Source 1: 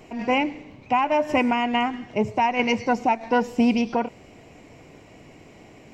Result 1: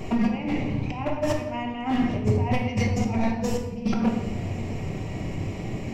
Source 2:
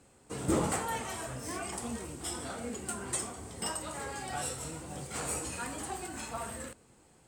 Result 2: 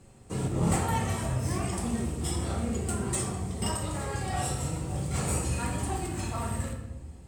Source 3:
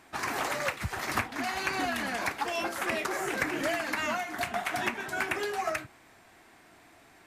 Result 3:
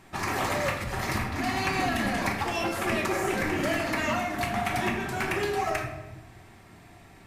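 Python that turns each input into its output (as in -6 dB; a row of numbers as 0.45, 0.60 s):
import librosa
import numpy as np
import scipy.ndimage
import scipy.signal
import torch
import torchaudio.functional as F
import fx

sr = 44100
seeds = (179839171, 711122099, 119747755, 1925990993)

y = fx.low_shelf(x, sr, hz=220.0, db=10.0)
y = fx.over_compress(y, sr, threshold_db=-27.0, ratio=-0.5)
y = np.clip(y, -10.0 ** (-20.0 / 20.0), 10.0 ** (-20.0 / 20.0))
y = fx.peak_eq(y, sr, hz=97.0, db=7.5, octaves=0.59)
y = fx.notch(y, sr, hz=1500.0, q=15.0)
y = fx.room_shoebox(y, sr, seeds[0], volume_m3=490.0, walls='mixed', distance_m=1.1)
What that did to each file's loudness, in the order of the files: -4.0, +5.5, +3.0 LU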